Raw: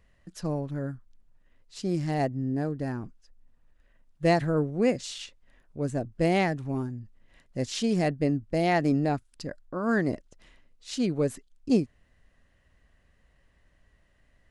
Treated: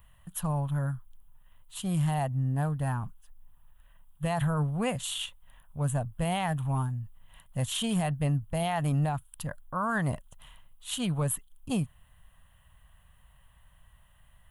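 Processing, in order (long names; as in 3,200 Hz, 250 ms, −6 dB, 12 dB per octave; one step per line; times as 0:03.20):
drawn EQ curve 150 Hz 0 dB, 350 Hz −21 dB, 970 Hz +5 dB, 2,200 Hz −8 dB, 3,200 Hz +5 dB, 5,000 Hz −18 dB, 11,000 Hz +15 dB
brickwall limiter −26 dBFS, peak gain reduction 10.5 dB
level +5.5 dB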